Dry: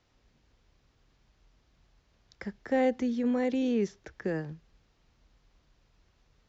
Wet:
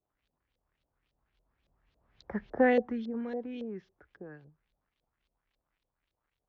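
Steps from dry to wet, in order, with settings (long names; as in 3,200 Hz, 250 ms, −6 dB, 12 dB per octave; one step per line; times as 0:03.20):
source passing by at 0:02.48, 17 m/s, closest 2.5 metres
surface crackle 310 per second −73 dBFS
auto-filter low-pass saw up 3.6 Hz 500–4,100 Hz
level +5 dB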